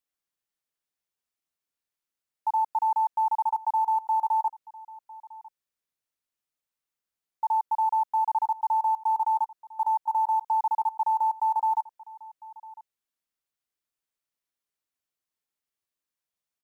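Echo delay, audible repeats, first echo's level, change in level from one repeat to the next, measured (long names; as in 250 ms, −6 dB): 1,002 ms, 1, −20.0 dB, repeats not evenly spaced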